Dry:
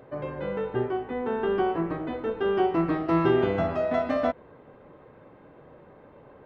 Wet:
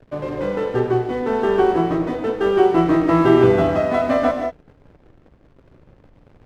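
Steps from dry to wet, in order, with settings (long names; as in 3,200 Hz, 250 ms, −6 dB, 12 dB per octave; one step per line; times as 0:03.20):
slack as between gear wheels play −40 dBFS
reverb whose tail is shaped and stops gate 210 ms rising, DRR 3.5 dB
level +7 dB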